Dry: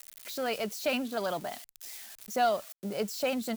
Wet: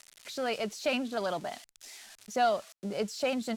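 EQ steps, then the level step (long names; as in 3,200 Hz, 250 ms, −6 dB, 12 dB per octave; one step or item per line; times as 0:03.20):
low-pass filter 8,100 Hz 12 dB per octave
0.0 dB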